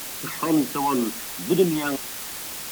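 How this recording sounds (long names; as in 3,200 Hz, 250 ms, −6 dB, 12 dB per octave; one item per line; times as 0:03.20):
phaser sweep stages 12, 2.1 Hz, lowest notch 450–2,000 Hz
a quantiser's noise floor 6 bits, dither triangular
WMA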